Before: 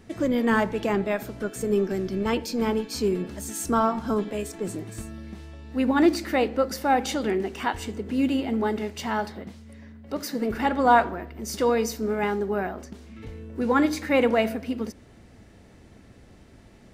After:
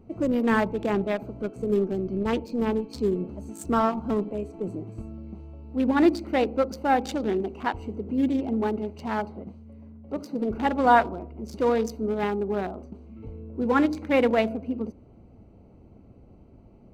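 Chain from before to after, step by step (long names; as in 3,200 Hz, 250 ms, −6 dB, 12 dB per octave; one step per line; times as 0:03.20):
adaptive Wiener filter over 25 samples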